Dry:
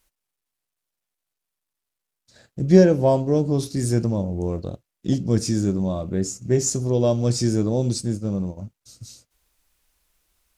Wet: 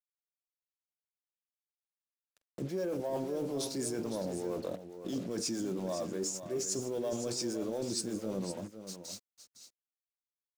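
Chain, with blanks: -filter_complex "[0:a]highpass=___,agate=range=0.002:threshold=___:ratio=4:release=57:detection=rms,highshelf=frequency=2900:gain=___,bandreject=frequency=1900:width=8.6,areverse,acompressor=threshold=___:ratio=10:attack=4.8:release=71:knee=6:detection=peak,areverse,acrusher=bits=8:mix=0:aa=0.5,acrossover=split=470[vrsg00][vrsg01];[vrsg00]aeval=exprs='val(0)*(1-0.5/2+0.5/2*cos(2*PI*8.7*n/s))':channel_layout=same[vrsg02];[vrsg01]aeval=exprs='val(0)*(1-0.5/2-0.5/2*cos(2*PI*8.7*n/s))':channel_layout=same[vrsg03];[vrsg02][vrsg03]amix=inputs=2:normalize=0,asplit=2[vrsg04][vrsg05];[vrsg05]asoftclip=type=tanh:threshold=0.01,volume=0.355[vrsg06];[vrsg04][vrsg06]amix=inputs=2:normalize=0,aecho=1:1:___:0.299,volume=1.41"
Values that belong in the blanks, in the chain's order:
350, 0.00398, -3.5, 0.0178, 509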